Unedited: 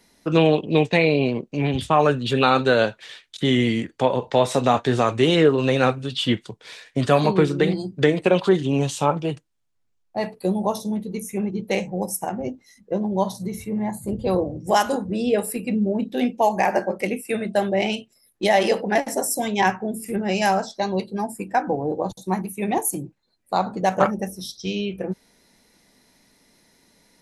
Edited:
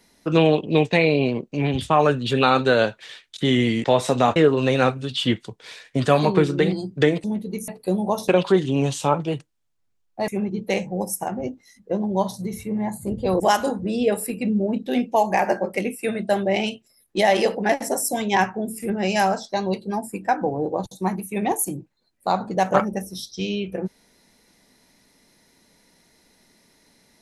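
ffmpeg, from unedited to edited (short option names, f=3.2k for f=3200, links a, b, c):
-filter_complex "[0:a]asplit=8[a][b][c][d][e][f][g][h];[a]atrim=end=3.842[i];[b]atrim=start=4.298:end=4.822[j];[c]atrim=start=5.368:end=8.252[k];[d]atrim=start=10.848:end=11.292[l];[e]atrim=start=10.248:end=10.852[m];[f]atrim=start=8.248:end=10.252[n];[g]atrim=start=11.288:end=14.412[o];[h]atrim=start=14.658[p];[i][j]acrossfade=d=0.004:c1=hsin:c2=hsin[q];[q][k]acrossfade=d=0.004:c1=hsin:c2=hsin[r];[r][l]acrossfade=d=0.004:c1=hsin:c2=hsin[s];[s][m]acrossfade=d=0.004:c1=hsin:c2=hsin[t];[t][n]acrossfade=d=0.004:c1=hsin:c2=hsin[u];[u][o]acrossfade=d=0.004:c1=hsin:c2=hsin[v];[v][p]acrossfade=d=0.004:c1=hsin:c2=hsin"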